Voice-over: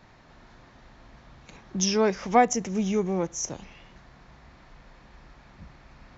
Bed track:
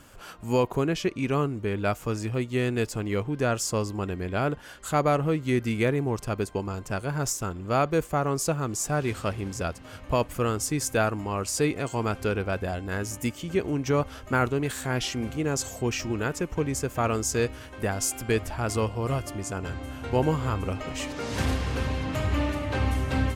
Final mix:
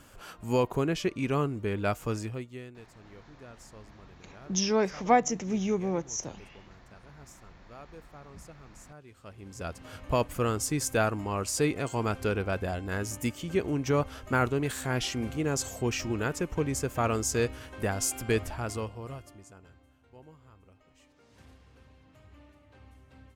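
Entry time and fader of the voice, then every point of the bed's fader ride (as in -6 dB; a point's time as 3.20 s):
2.75 s, -3.0 dB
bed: 2.18 s -2.5 dB
2.82 s -24.5 dB
9.10 s -24.5 dB
9.81 s -2 dB
18.42 s -2 dB
20.07 s -29 dB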